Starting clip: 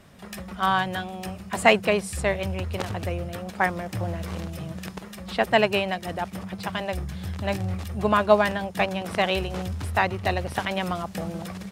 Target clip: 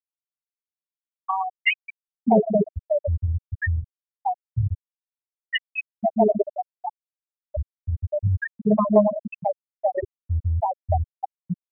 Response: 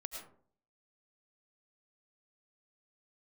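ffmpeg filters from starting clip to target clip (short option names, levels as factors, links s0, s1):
-filter_complex "[0:a]acrossover=split=390|1400[s0][s1][s2];[s0]adelay=620[s3];[s1]adelay=660[s4];[s3][s4][s2]amix=inputs=3:normalize=0,asplit=2[s5][s6];[1:a]atrim=start_sample=2205,afade=t=out:st=0.33:d=0.01,atrim=end_sample=14994,highshelf=f=2000:g=4[s7];[s6][s7]afir=irnorm=-1:irlink=0,volume=0.473[s8];[s5][s8]amix=inputs=2:normalize=0,afftfilt=real='re*gte(hypot(re,im),0.501)':imag='im*gte(hypot(re,im),0.501)':win_size=1024:overlap=0.75,acrossover=split=480|3000[s9][s10][s11];[s10]acompressor=threshold=0.0224:ratio=5[s12];[s9][s12][s11]amix=inputs=3:normalize=0,volume=2.66"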